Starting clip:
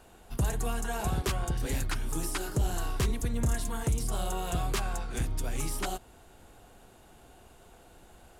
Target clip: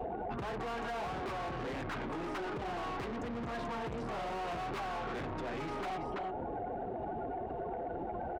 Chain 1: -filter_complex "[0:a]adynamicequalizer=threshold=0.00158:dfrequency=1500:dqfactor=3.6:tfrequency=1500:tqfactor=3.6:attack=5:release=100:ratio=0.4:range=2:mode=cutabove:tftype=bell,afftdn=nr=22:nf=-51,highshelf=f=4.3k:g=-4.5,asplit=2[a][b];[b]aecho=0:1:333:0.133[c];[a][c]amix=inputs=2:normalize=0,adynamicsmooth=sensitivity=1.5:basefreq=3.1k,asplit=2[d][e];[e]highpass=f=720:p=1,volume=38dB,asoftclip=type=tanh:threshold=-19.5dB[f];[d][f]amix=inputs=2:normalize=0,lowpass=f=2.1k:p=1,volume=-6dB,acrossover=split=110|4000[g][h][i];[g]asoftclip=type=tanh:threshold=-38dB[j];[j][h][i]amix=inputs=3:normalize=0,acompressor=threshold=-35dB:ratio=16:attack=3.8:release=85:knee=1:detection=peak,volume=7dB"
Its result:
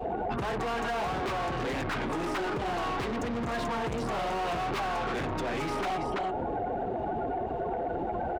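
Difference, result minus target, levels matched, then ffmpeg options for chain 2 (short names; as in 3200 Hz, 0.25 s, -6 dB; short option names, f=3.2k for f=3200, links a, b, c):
compressor: peak gain reduction -7 dB; 8000 Hz band +3.5 dB
-filter_complex "[0:a]adynamicequalizer=threshold=0.00158:dfrequency=1500:dqfactor=3.6:tfrequency=1500:tqfactor=3.6:attack=5:release=100:ratio=0.4:range=2:mode=cutabove:tftype=bell,afftdn=nr=22:nf=-51,highshelf=f=4.3k:g=-16.5,asplit=2[a][b];[b]aecho=0:1:333:0.133[c];[a][c]amix=inputs=2:normalize=0,adynamicsmooth=sensitivity=1.5:basefreq=3.1k,asplit=2[d][e];[e]highpass=f=720:p=1,volume=38dB,asoftclip=type=tanh:threshold=-19.5dB[f];[d][f]amix=inputs=2:normalize=0,lowpass=f=2.1k:p=1,volume=-6dB,acrossover=split=110|4000[g][h][i];[g]asoftclip=type=tanh:threshold=-38dB[j];[j][h][i]amix=inputs=3:normalize=0,acompressor=threshold=-42.5dB:ratio=16:attack=3.8:release=85:knee=1:detection=peak,volume=7dB"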